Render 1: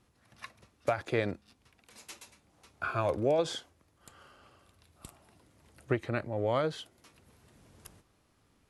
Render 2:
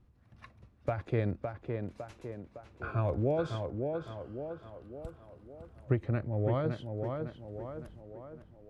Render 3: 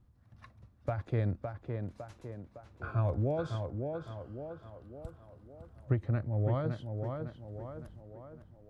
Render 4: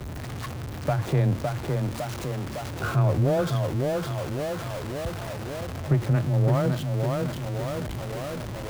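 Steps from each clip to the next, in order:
RIAA curve playback; on a send: tape echo 558 ms, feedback 58%, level -3.5 dB, low-pass 2.1 kHz; on the sum: trim -6 dB
fifteen-band graphic EQ 100 Hz +4 dB, 400 Hz -4 dB, 2.5 kHz -5 dB; trim -1.5 dB
jump at every zero crossing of -37.5 dBFS; frequency shift +15 Hz; waveshaping leveller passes 1; trim +4.5 dB

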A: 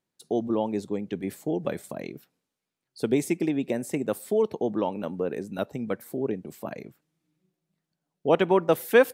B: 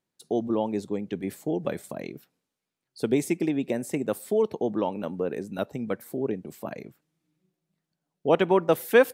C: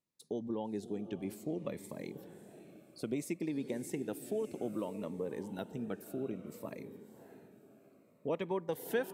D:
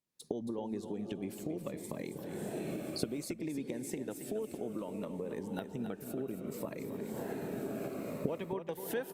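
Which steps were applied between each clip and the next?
no audible change
compression 2:1, threshold -27 dBFS, peak gain reduction 8 dB; echo that smears into a reverb 610 ms, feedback 41%, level -12 dB; Shepard-style phaser falling 0.61 Hz; trim -7 dB
recorder AGC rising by 46 dB/s; on a send: delay 274 ms -9 dB; on the sum: trim -4 dB; Opus 64 kbps 48 kHz

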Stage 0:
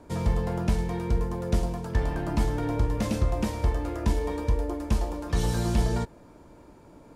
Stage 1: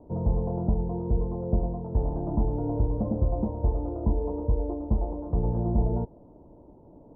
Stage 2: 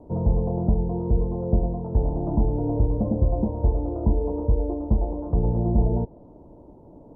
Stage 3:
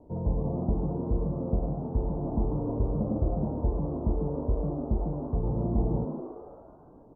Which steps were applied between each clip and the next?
steep low-pass 860 Hz 36 dB/octave
low-pass that closes with the level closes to 940 Hz, closed at -24.5 dBFS; trim +4 dB
frequency-shifting echo 144 ms, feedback 54%, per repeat +100 Hz, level -7.5 dB; trim -7 dB

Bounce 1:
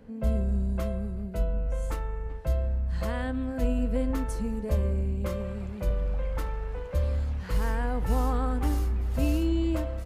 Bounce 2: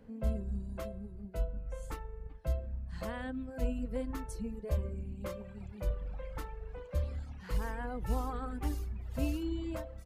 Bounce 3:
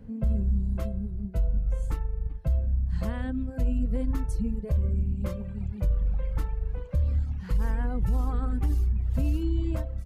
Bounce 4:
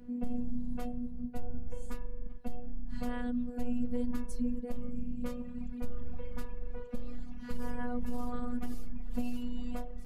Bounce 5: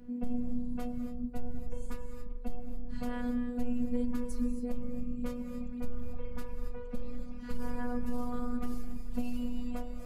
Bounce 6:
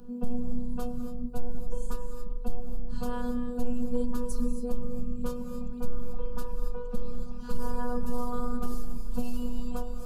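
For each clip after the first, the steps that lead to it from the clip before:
reverb removal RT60 1.3 s; trim -5.5 dB
tone controls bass +13 dB, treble 0 dB; peak limiter -19.5 dBFS, peak gain reduction 9.5 dB; trim +1.5 dB
reverse; upward compressor, threshold -35 dBFS; reverse; robot voice 243 Hz; trim -1.5 dB
gated-style reverb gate 300 ms rising, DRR 6.5 dB
static phaser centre 410 Hz, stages 8; trim +8 dB

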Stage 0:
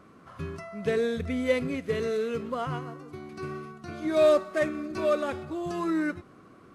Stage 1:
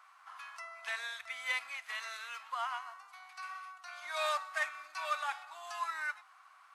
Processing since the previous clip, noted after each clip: elliptic high-pass 820 Hz, stop band 50 dB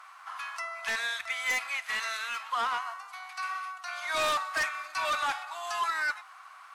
peaking EQ 270 Hz -5 dB 0.31 oct; in parallel at -9 dB: sine folder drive 12 dB, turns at -20.5 dBFS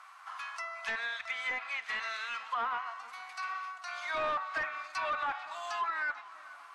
low-pass that closes with the level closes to 1.9 kHz, closed at -26 dBFS; tape echo 443 ms, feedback 69%, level -18 dB, low-pass 4.4 kHz; trim -3 dB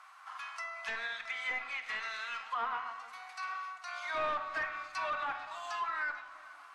simulated room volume 410 m³, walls mixed, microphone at 0.5 m; trim -2.5 dB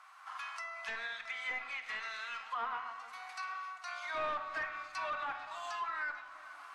recorder AGC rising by 9.3 dB/s; trim -2.5 dB

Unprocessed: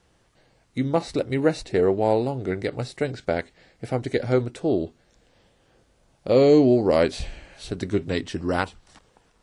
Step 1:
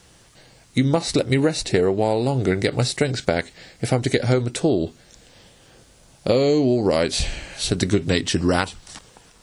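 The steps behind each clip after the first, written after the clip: treble shelf 3 kHz +11.5 dB; compression 12:1, threshold -23 dBFS, peak gain reduction 12 dB; peaking EQ 140 Hz +3.5 dB 1.4 oct; trim +7.5 dB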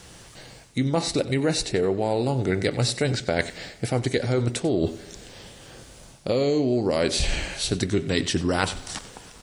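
reverse; compression, threshold -26 dBFS, peak gain reduction 12.5 dB; reverse; delay 93 ms -16 dB; spring tank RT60 1.6 s, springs 42/49 ms, DRR 19 dB; trim +5.5 dB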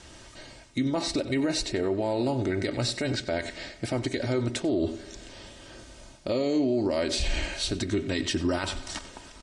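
Bessel low-pass 7.1 kHz, order 4; comb 3.2 ms, depth 57%; peak limiter -16 dBFS, peak gain reduction 9.5 dB; trim -2 dB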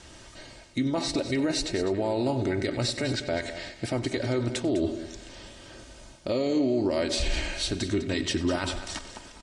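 delay 202 ms -12 dB

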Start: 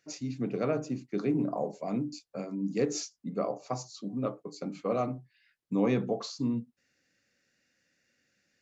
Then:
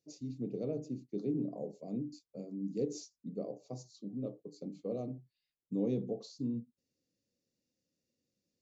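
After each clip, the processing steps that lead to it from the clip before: FFT filter 480 Hz 0 dB, 1.5 kHz -28 dB, 3.8 kHz -6 dB; trim -6 dB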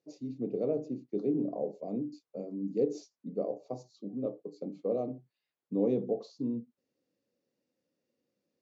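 band-pass filter 730 Hz, Q 0.62; trim +8.5 dB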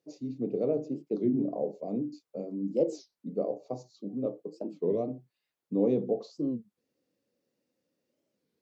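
warped record 33 1/3 rpm, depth 250 cents; trim +2.5 dB

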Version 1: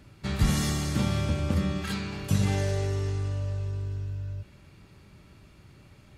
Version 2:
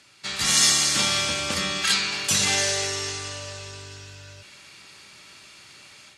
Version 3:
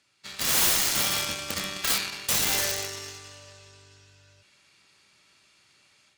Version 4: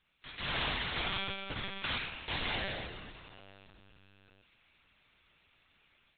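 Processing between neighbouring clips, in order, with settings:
frequency weighting ITU-R 468; level rider gain up to 7.5 dB
Chebyshev shaper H 5 -8 dB, 7 -8 dB, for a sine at -4.5 dBFS; integer overflow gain 14 dB
LPC vocoder at 8 kHz pitch kept; trim -5 dB

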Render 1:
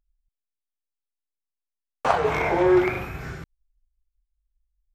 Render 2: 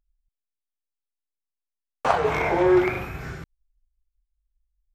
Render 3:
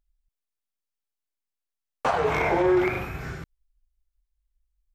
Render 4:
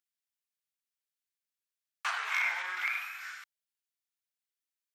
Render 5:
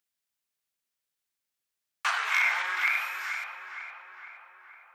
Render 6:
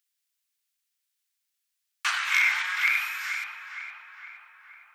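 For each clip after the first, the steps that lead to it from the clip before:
no audible change
peak limiter -13.5 dBFS, peak gain reduction 8 dB
high-pass 1.4 kHz 24 dB/octave
filtered feedback delay 465 ms, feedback 64%, low-pass 2.5 kHz, level -7.5 dB; trim +5.5 dB
Bessel high-pass 2 kHz, order 2; trim +5.5 dB

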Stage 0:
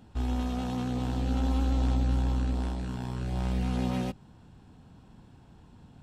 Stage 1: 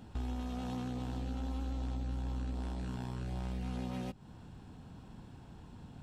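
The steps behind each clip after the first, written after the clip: compression 4:1, threshold -39 dBFS, peak gain reduction 14 dB; trim +2 dB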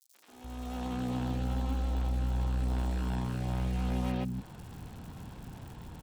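fade-in on the opening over 0.96 s; crackle 190 per s -47 dBFS; three bands offset in time highs, mids, lows 130/290 ms, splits 260/4900 Hz; trim +7 dB

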